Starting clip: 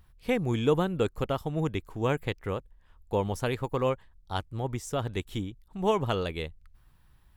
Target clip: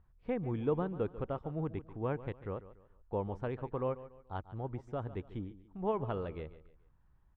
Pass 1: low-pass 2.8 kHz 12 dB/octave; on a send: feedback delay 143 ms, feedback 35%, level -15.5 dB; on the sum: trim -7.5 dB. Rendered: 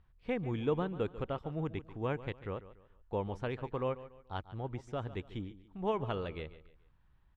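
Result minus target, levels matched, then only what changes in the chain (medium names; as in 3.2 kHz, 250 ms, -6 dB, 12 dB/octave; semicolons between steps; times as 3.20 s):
2 kHz band +5.0 dB
change: low-pass 1.4 kHz 12 dB/octave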